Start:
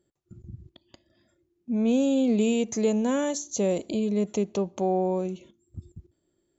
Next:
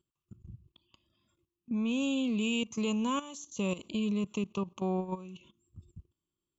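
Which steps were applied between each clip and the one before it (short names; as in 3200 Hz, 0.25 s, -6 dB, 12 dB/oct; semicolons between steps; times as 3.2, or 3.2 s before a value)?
EQ curve 180 Hz 0 dB, 280 Hz -5 dB, 720 Hz -12 dB, 1100 Hz +10 dB, 1800 Hz -14 dB, 2700 Hz +10 dB, 4400 Hz -3 dB, 7400 Hz -1 dB; level quantiser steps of 15 dB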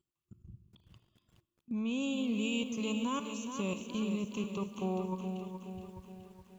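reverb RT60 1.6 s, pre-delay 40 ms, DRR 13 dB; lo-fi delay 0.421 s, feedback 55%, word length 10-bit, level -7.5 dB; gain -3.5 dB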